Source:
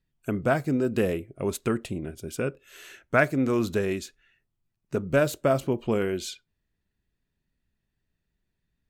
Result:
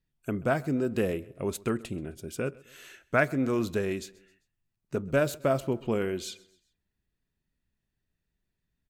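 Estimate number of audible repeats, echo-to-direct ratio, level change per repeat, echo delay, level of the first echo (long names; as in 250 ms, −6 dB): 2, −22.0 dB, −7.0 dB, 131 ms, −23.0 dB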